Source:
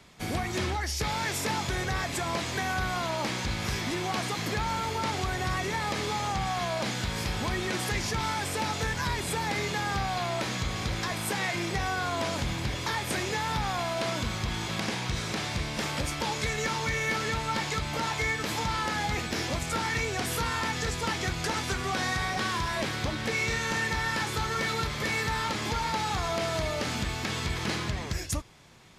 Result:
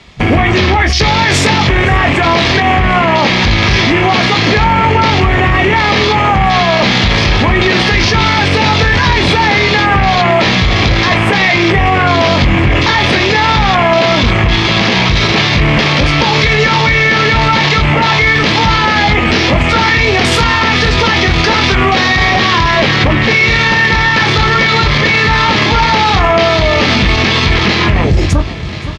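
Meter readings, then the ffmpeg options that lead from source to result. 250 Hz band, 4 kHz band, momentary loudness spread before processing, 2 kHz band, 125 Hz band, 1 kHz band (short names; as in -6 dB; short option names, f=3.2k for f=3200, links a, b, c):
+21.0 dB, +20.5 dB, 3 LU, +21.0 dB, +20.5 dB, +19.5 dB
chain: -filter_complex "[0:a]equalizer=f=1.2k:w=0.58:g=-3,areverse,acompressor=mode=upward:threshold=-43dB:ratio=2.5,areverse,afwtdn=0.0112,lowpass=3.1k,highshelf=f=2.2k:g=10.5,bandreject=f=1.5k:w=13,asplit=2[a][b];[b]adelay=21,volume=-8dB[c];[a][c]amix=inputs=2:normalize=0,aecho=1:1:518|1036|1554|2072:0.0891|0.0481|0.026|0.014,alimiter=level_in=31dB:limit=-1dB:release=50:level=0:latency=1,volume=-1dB"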